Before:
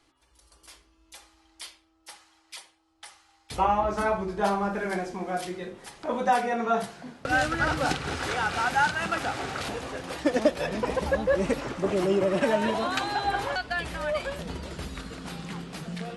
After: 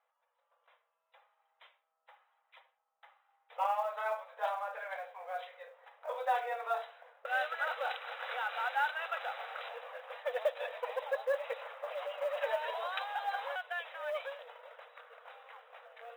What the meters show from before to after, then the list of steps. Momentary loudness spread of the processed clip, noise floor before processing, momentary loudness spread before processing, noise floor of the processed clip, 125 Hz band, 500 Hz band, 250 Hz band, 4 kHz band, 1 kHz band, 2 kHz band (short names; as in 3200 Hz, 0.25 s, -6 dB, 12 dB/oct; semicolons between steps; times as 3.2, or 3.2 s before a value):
19 LU, -66 dBFS, 14 LU, -82 dBFS, under -40 dB, -10.0 dB, under -40 dB, -11.0 dB, -8.5 dB, -8.5 dB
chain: brick-wall FIR band-pass 460–4000 Hz; low-pass opened by the level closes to 1500 Hz, open at -22.5 dBFS; short-mantissa float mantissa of 4-bit; gain -8.5 dB